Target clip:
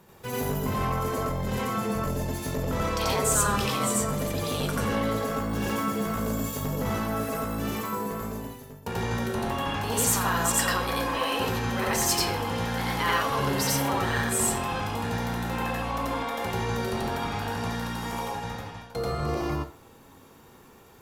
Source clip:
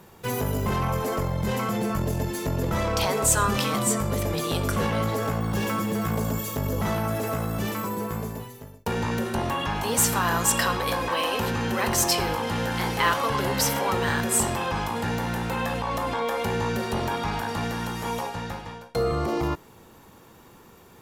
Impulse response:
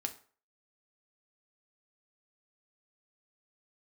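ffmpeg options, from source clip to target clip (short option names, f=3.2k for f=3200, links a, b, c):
-filter_complex "[0:a]asplit=2[a][b];[1:a]atrim=start_sample=2205,adelay=87[c];[b][c]afir=irnorm=-1:irlink=0,volume=2.5dB[d];[a][d]amix=inputs=2:normalize=0,volume=-6dB"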